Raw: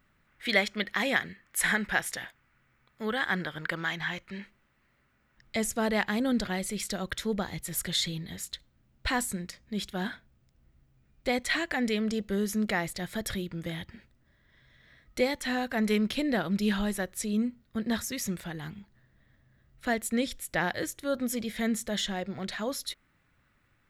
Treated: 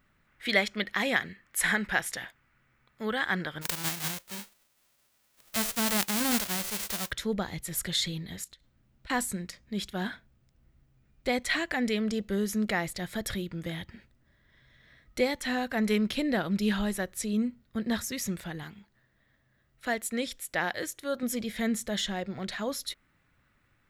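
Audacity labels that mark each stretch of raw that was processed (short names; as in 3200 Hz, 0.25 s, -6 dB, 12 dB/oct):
3.610000	7.100000	spectral whitening exponent 0.1
8.440000	9.100000	compressor 5:1, threshold -49 dBFS
18.630000	21.230000	low shelf 240 Hz -9.5 dB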